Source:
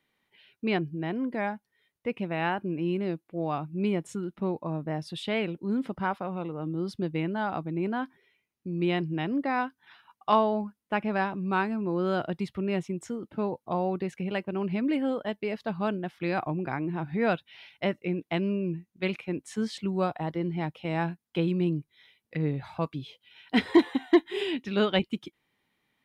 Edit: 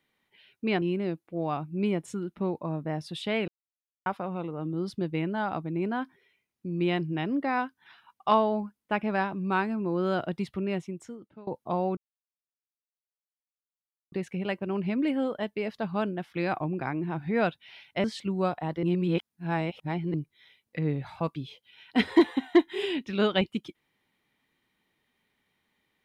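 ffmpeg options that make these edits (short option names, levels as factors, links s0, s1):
-filter_complex "[0:a]asplit=9[s0][s1][s2][s3][s4][s5][s6][s7][s8];[s0]atrim=end=0.822[s9];[s1]atrim=start=2.828:end=5.49,asetpts=PTS-STARTPTS,afade=t=out:st=2.658:d=0.004:c=hsin[s10];[s2]atrim=start=5.49:end=6.07,asetpts=PTS-STARTPTS,volume=0[s11];[s3]atrim=start=6.07:end=13.48,asetpts=PTS-STARTPTS,afade=t=in:d=0.004:c=hsin,afade=t=out:st=6.5:d=0.91:silence=0.0668344[s12];[s4]atrim=start=13.48:end=13.98,asetpts=PTS-STARTPTS,afade=t=in:d=0.004:c=hsin:silence=0.0668344,afade=t=out:st=0.496:d=0.004:c=hsin,apad=pad_dur=2.15[s13];[s5]atrim=start=13.98:end=17.902,asetpts=PTS-STARTPTS,afade=t=in:d=0.004:c=hsin[s14];[s6]atrim=start=19.618:end=20.412[s15];[s7]atrim=start=20.408:end=21.722,asetpts=PTS-STARTPTS,areverse[s16];[s8]atrim=start=21.718[s17];[s10][s11][s12][s13][s14]concat=n=5:v=0:a=1[s18];[s9][s18]acrossfade=d=0.004:c1=hsin:c2=hsin[s19];[s19][s15]acrossfade=d=0.004:c1=hsin:c2=hsin[s20];[s20][s16]acrossfade=d=0.004:c1=hsin:c2=hsin[s21];[s21][s17]acrossfade=d=0.004:c1=hsin:c2=hsin"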